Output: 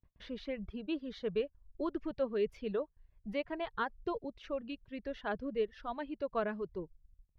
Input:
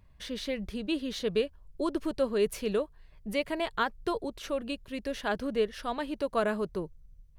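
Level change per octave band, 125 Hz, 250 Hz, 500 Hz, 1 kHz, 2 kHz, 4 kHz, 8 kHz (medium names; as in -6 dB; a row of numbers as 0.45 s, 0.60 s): -6.5 dB, -6.5 dB, -6.0 dB, -6.0 dB, -7.5 dB, -11.5 dB, under -20 dB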